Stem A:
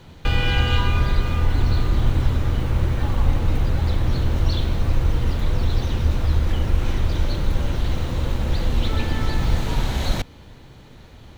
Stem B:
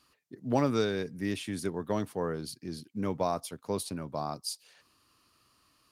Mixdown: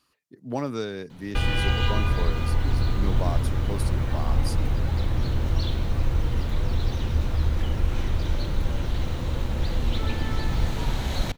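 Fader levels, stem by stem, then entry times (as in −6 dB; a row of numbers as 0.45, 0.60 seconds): −4.0, −2.0 decibels; 1.10, 0.00 seconds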